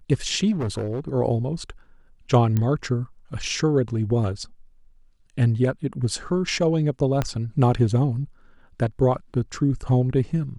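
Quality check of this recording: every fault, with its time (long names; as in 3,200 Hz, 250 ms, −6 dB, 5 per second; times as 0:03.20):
0:00.51–0:01.09: clipping −22.5 dBFS
0:02.57: click −12 dBFS
0:07.22: click −10 dBFS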